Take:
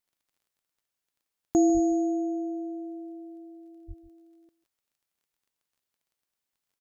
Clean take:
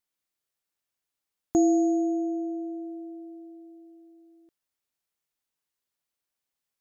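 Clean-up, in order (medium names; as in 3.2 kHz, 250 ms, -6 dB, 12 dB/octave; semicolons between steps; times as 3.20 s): de-click; 1.73–1.85 s: high-pass 140 Hz 24 dB/octave; 3.87–3.99 s: high-pass 140 Hz 24 dB/octave; inverse comb 150 ms -18.5 dB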